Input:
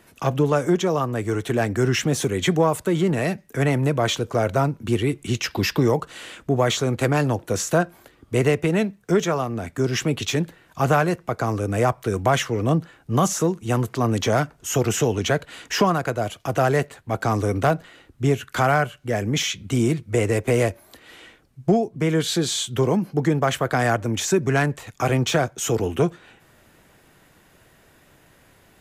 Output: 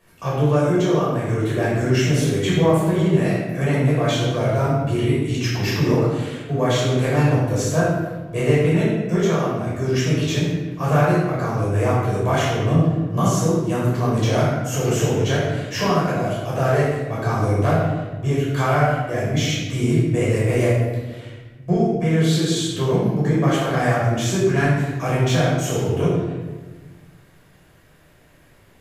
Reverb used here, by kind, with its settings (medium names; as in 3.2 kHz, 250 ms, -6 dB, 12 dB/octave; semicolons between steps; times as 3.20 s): simulated room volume 810 m³, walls mixed, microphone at 5.6 m; trim -10.5 dB